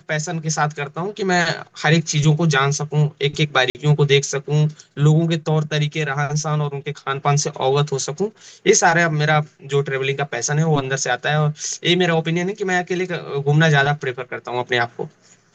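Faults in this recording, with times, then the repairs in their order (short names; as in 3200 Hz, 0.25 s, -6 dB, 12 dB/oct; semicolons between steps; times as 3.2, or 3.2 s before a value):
3.7–3.75 gap 49 ms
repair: interpolate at 3.7, 49 ms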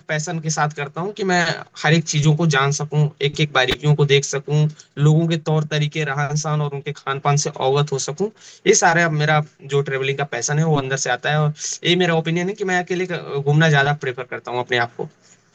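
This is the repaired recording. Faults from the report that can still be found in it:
none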